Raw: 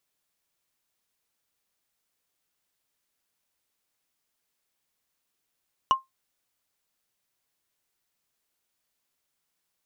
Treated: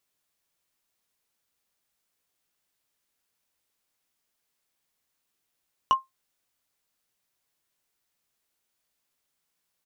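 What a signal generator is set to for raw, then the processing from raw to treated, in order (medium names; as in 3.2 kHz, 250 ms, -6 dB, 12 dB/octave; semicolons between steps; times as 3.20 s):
wood hit, lowest mode 1.06 kHz, decay 0.16 s, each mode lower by 9 dB, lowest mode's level -12.5 dB
doubling 18 ms -11.5 dB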